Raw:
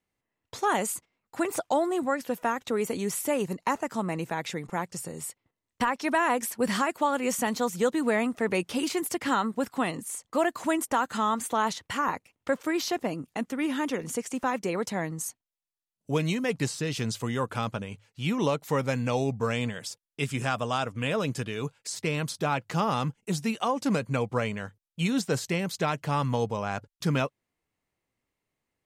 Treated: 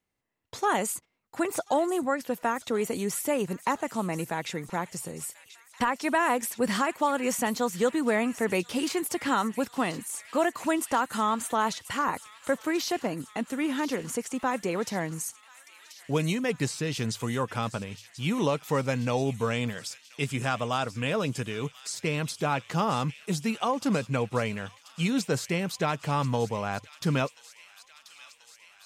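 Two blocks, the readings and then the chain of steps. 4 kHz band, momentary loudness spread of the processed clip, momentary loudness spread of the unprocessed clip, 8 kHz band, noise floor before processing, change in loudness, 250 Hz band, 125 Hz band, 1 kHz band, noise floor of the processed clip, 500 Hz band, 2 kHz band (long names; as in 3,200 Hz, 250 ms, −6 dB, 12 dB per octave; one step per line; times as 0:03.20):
+0.5 dB, 7 LU, 7 LU, +0.5 dB, below −85 dBFS, 0.0 dB, 0.0 dB, 0.0 dB, 0.0 dB, −57 dBFS, 0.0 dB, 0.0 dB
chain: delay with a high-pass on its return 1,035 ms, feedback 73%, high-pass 2,500 Hz, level −13 dB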